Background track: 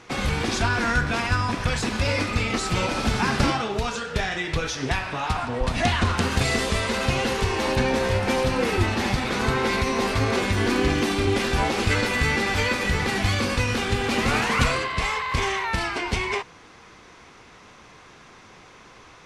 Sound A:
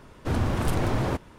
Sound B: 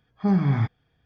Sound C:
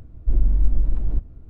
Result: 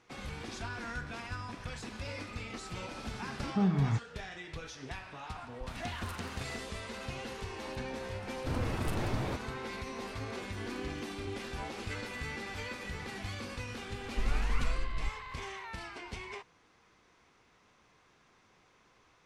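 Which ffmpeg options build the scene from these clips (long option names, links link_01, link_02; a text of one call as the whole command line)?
ffmpeg -i bed.wav -i cue0.wav -i cue1.wav -i cue2.wav -filter_complex "[1:a]asplit=2[link_01][link_02];[0:a]volume=-17.5dB[link_03];[link_01]highpass=1300[link_04];[2:a]atrim=end=1.05,asetpts=PTS-STARTPTS,volume=-7.5dB,afade=type=in:duration=0.004:curve=hsin,afade=type=out:start_time=1.046:duration=0.004:curve=hsin,adelay=3320[link_05];[link_04]atrim=end=1.38,asetpts=PTS-STARTPTS,volume=-12.5dB,afade=type=in:duration=0.004:curve=hsin,afade=type=out:start_time=1.376:duration=0.004:curve=hsin,adelay=238581S[link_06];[link_02]atrim=end=1.38,asetpts=PTS-STARTPTS,volume=-9dB,afade=type=in:duration=0.004:curve=hsin,afade=type=out:start_time=1.376:duration=0.004:curve=hsin,adelay=8200[link_07];[3:a]atrim=end=1.49,asetpts=PTS-STARTPTS,volume=-14dB,afade=type=in:duration=0.004:curve=hsin,afade=type=out:start_time=1.486:duration=0.004:curve=hsin,adelay=13900[link_08];[link_03][link_05][link_06][link_07][link_08]amix=inputs=5:normalize=0" out.wav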